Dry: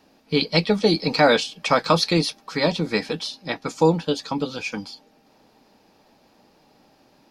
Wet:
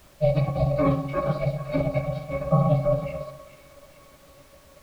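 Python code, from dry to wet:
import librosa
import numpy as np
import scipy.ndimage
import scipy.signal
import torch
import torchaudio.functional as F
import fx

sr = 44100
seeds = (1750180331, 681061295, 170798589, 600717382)

p1 = x + fx.echo_split(x, sr, split_hz=1100.0, low_ms=138, high_ms=651, feedback_pct=52, wet_db=-12, dry=0)
p2 = fx.rider(p1, sr, range_db=4, speed_s=2.0)
p3 = fx.notch_comb(p2, sr, f0_hz=210.0)
p4 = fx.rev_fdn(p3, sr, rt60_s=0.85, lf_ratio=0.8, hf_ratio=0.5, size_ms=20.0, drr_db=-5.0)
p5 = fx.level_steps(p4, sr, step_db=15)
p6 = p4 + (p5 * librosa.db_to_amplitude(-2.5))
p7 = p6 * np.sin(2.0 * np.pi * 310.0 * np.arange(len(p6)) / sr)
p8 = fx.octave_resonator(p7, sr, note='C#', decay_s=0.17)
p9 = fx.stretch_grains(p8, sr, factor=0.66, grain_ms=124.0)
p10 = fx.graphic_eq_10(p9, sr, hz=(500, 2000, 4000), db=(8, 5, 5))
p11 = fx.dmg_noise_colour(p10, sr, seeds[0], colour='pink', level_db=-56.0)
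y = p11 * librosa.db_to_amplitude(1.5)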